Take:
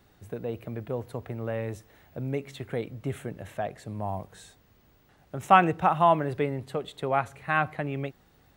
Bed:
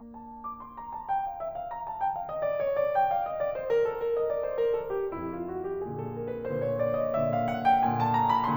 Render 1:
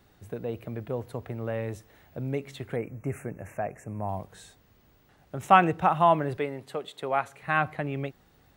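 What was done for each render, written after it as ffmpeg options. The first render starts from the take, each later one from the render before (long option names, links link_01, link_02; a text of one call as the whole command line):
ffmpeg -i in.wav -filter_complex "[0:a]asettb=1/sr,asplit=3[link_01][link_02][link_03];[link_01]atrim=end=2.764[link_04];[link_02]atrim=start=2.76:end=4.09,asetpts=PTS-STARTPTS,afade=type=in:duration=0.004:curve=qsin,afade=type=out:start_time=1.326:duration=0.004:curve=qsin,asuperstop=centerf=3900:order=12:qfactor=1.3[link_05];[link_03]atrim=start=4.086[link_06];[link_04][link_05]acrossfade=duration=0.004:curve1=hsin:curve2=qsin[link_07];[link_07][link_06]acrossfade=duration=0.004:curve1=qsin:curve2=hsin,asettb=1/sr,asplit=3[link_08][link_09][link_10];[link_08]atrim=end=6.374[link_11];[link_09]atrim=start=6.37:end=7.43,asetpts=PTS-STARTPTS,afade=type=in:duration=0.004:curve=qsin,afade=type=out:start_time=1.056:duration=0.004:curve=qsin,highpass=frequency=360:poles=1[link_12];[link_10]atrim=start=7.426[link_13];[link_11][link_12]acrossfade=duration=0.004:curve1=hsin:curve2=qsin[link_14];[link_14][link_13]acrossfade=duration=0.004:curve1=qsin:curve2=hsin" out.wav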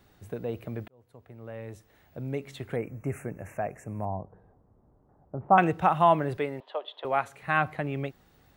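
ffmpeg -i in.wav -filter_complex "[0:a]asettb=1/sr,asplit=3[link_01][link_02][link_03];[link_01]atrim=end=4.054[link_04];[link_02]atrim=start=4.05:end=5.58,asetpts=PTS-STARTPTS,afade=type=in:duration=0.004:curve=qsin,afade=type=out:start_time=1.526:duration=0.004:curve=qsin,lowpass=frequency=1000:width=0.5412,lowpass=frequency=1000:width=1.3066[link_05];[link_03]atrim=start=5.576[link_06];[link_04][link_05]acrossfade=duration=0.004:curve1=hsin:curve2=qsin[link_07];[link_07][link_06]acrossfade=duration=0.004:curve1=qsin:curve2=hsin,asettb=1/sr,asplit=3[link_08][link_09][link_10];[link_08]atrim=end=6.604[link_11];[link_09]atrim=start=6.6:end=7.05,asetpts=PTS-STARTPTS,afade=type=in:duration=0.004:curve=qsin,afade=type=out:start_time=0.446:duration=0.004:curve=qsin,highpass=frequency=420:width=0.5412,highpass=frequency=420:width=1.3066,equalizer=frequency=430:width_type=q:width=4:gain=-6,equalizer=frequency=610:width_type=q:width=4:gain=6,equalizer=frequency=970:width_type=q:width=4:gain=8,equalizer=frequency=1400:width_type=q:width=4:gain=-4,equalizer=frequency=2200:width_type=q:width=4:gain=-9,equalizer=frequency=3300:width_type=q:width=4:gain=7,lowpass=frequency=3400:width=0.5412,lowpass=frequency=3400:width=1.3066[link_12];[link_10]atrim=start=7.046[link_13];[link_11][link_12]acrossfade=duration=0.004:curve1=hsin:curve2=qsin[link_14];[link_14][link_13]acrossfade=duration=0.004:curve1=qsin:curve2=hsin,asplit=2[link_15][link_16];[link_15]atrim=end=0.88,asetpts=PTS-STARTPTS,afade=type=out:start_time=0.876:duration=0.004:curve=hsin[link_17];[link_16]atrim=start=0.88,asetpts=PTS-STARTPTS,afade=type=in:duration=1.84[link_18];[link_17][link_18]concat=n=2:v=0:a=1" out.wav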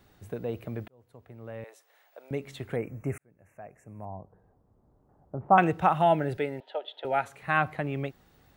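ffmpeg -i in.wav -filter_complex "[0:a]asettb=1/sr,asplit=3[link_01][link_02][link_03];[link_01]atrim=end=1.644[link_04];[link_02]atrim=start=1.64:end=2.31,asetpts=PTS-STARTPTS,afade=type=in:duration=0.004:curve=qsin,afade=type=out:start_time=0.666:duration=0.004:curve=qsin,highpass=frequency=540:width=0.5412,highpass=frequency=540:width=1.3066[link_05];[link_03]atrim=start=2.306[link_06];[link_04][link_05]acrossfade=duration=0.004:curve1=hsin:curve2=qsin[link_07];[link_07][link_06]acrossfade=duration=0.004:curve1=qsin:curve2=hsin,asettb=1/sr,asplit=3[link_08][link_09][link_10];[link_08]atrim=end=6.014[link_11];[link_09]atrim=start=6.01:end=7.24,asetpts=PTS-STARTPTS,afade=type=in:duration=0.004:curve=qsin,afade=type=out:start_time=1.226:duration=0.004:curve=qsin,asuperstop=centerf=1100:order=8:qfactor=3.9[link_12];[link_10]atrim=start=7.236[link_13];[link_11][link_12]acrossfade=duration=0.004:curve1=hsin:curve2=qsin[link_14];[link_14][link_13]acrossfade=duration=0.004:curve1=qsin:curve2=hsin,asplit=2[link_15][link_16];[link_15]atrim=end=3.18,asetpts=PTS-STARTPTS,afade=type=out:start_time=3.176:duration=0.004:curve=hsin[link_17];[link_16]atrim=start=3.18,asetpts=PTS-STARTPTS,afade=type=in:duration=2.18[link_18];[link_17][link_18]concat=n=2:v=0:a=1" out.wav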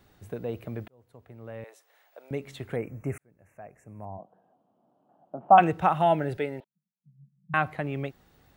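ffmpeg -i in.wav -filter_complex "[0:a]asplit=3[link_01][link_02][link_03];[link_01]afade=type=out:start_time=4.17:duration=0.02[link_04];[link_02]highpass=frequency=190:width=0.5412,highpass=frequency=190:width=1.3066,equalizer=frequency=420:width_type=q:width=4:gain=-8,equalizer=frequency=690:width_type=q:width=4:gain=9,equalizer=frequency=2000:width_type=q:width=4:gain=-9,equalizer=frequency=3000:width_type=q:width=4:gain=10,lowpass=frequency=3800:width=0.5412,lowpass=frequency=3800:width=1.3066,afade=type=in:start_time=4.17:duration=0.02,afade=type=out:start_time=5.59:duration=0.02[link_05];[link_03]afade=type=in:start_time=5.59:duration=0.02[link_06];[link_04][link_05][link_06]amix=inputs=3:normalize=0,asettb=1/sr,asplit=3[link_07][link_08][link_09];[link_07]atrim=end=6.644[link_10];[link_08]atrim=start=6.64:end=7.54,asetpts=PTS-STARTPTS,afade=type=in:duration=0.004:curve=qsin,afade=type=out:start_time=0.896:duration=0.004:curve=qsin,asuperpass=centerf=170:order=12:qfactor=2.5[link_11];[link_09]atrim=start=7.536[link_12];[link_10][link_11]acrossfade=duration=0.004:curve1=hsin:curve2=qsin[link_13];[link_13][link_12]acrossfade=duration=0.004:curve1=qsin:curve2=hsin" out.wav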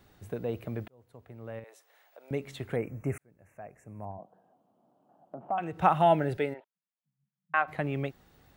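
ffmpeg -i in.wav -filter_complex "[0:a]asettb=1/sr,asplit=3[link_01][link_02][link_03];[link_01]atrim=end=1.594[link_04];[link_02]atrim=start=1.59:end=2.28,asetpts=PTS-STARTPTS,afade=type=in:duration=0.004:curve=qsin,afade=type=out:start_time=0.686:duration=0.004:curve=qsin,acompressor=threshold=-53dB:ratio=1.5:attack=3.2:release=140:knee=1:detection=peak[link_05];[link_03]atrim=start=2.276[link_06];[link_04][link_05]acrossfade=duration=0.004:curve1=hsin:curve2=qsin[link_07];[link_07][link_06]acrossfade=duration=0.004:curve1=qsin:curve2=hsin,asettb=1/sr,asplit=3[link_08][link_09][link_10];[link_08]atrim=end=4.114[link_11];[link_09]atrim=start=4.11:end=5.8,asetpts=PTS-STARTPTS,afade=type=in:duration=0.004:curve=qsin,afade=type=out:start_time=1.686:duration=0.004:curve=qsin,acompressor=threshold=-40dB:ratio=2:attack=3.2:release=140:knee=1:detection=peak[link_12];[link_10]atrim=start=5.796[link_13];[link_11][link_12]acrossfade=duration=0.004:curve1=hsin:curve2=qsin[link_14];[link_14][link_13]acrossfade=duration=0.004:curve1=qsin:curve2=hsin,asplit=3[link_15][link_16][link_17];[link_15]afade=type=out:start_time=6.53:duration=0.02[link_18];[link_16]highpass=600,lowpass=2300,afade=type=in:start_time=6.53:duration=0.02,afade=type=out:start_time=7.67:duration=0.02[link_19];[link_17]afade=type=in:start_time=7.67:duration=0.02[link_20];[link_18][link_19][link_20]amix=inputs=3:normalize=0" out.wav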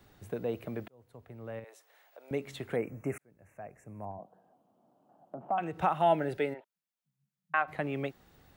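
ffmpeg -i in.wav -filter_complex "[0:a]acrossover=split=170|3500[link_01][link_02][link_03];[link_01]acompressor=threshold=-48dB:ratio=6[link_04];[link_04][link_02][link_03]amix=inputs=3:normalize=0,alimiter=limit=-15dB:level=0:latency=1:release=468" out.wav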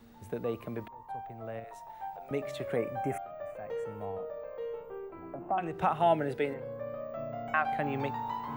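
ffmpeg -i in.wav -i bed.wav -filter_complex "[1:a]volume=-11.5dB[link_01];[0:a][link_01]amix=inputs=2:normalize=0" out.wav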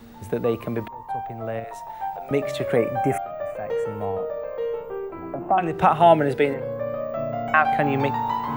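ffmpeg -i in.wav -af "volume=11dB" out.wav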